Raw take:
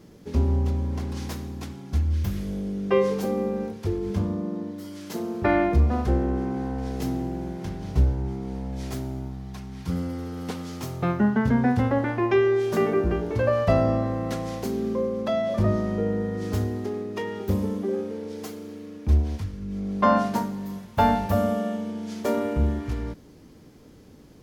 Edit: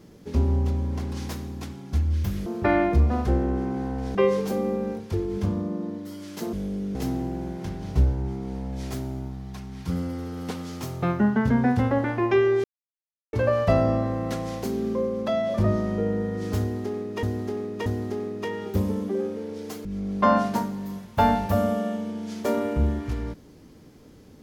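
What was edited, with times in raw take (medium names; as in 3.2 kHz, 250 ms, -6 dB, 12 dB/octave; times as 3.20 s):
2.46–2.88 s: swap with 5.26–6.95 s
12.64–13.33 s: mute
16.60–17.23 s: loop, 3 plays
18.59–19.65 s: delete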